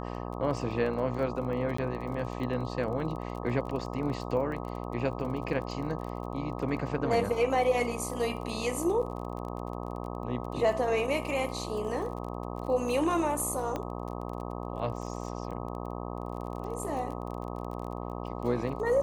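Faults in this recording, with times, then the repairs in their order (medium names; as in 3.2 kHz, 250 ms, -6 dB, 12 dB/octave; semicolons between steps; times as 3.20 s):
buzz 60 Hz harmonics 21 -37 dBFS
crackle 28 per s -38 dBFS
1.77–1.78 s: dropout 14 ms
13.76 s: pop -20 dBFS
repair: de-click; de-hum 60 Hz, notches 21; interpolate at 1.77 s, 14 ms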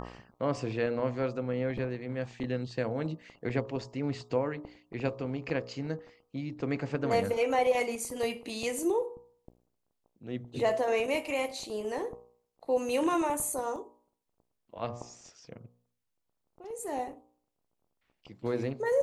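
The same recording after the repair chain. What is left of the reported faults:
13.76 s: pop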